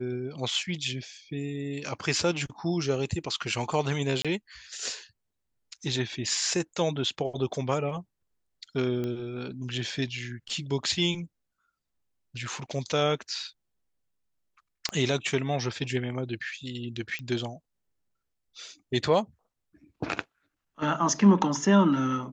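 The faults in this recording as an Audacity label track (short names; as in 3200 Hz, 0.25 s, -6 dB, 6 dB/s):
4.220000	4.250000	gap 26 ms
9.040000	9.040000	pop -21 dBFS
14.890000	14.890000	pop -16 dBFS
17.190000	17.190000	pop -22 dBFS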